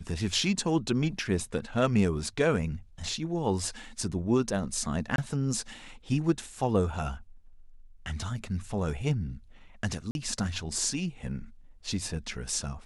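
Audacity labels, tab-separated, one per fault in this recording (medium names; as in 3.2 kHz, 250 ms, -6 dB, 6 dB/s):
5.160000	5.180000	dropout 22 ms
10.110000	10.150000	dropout 41 ms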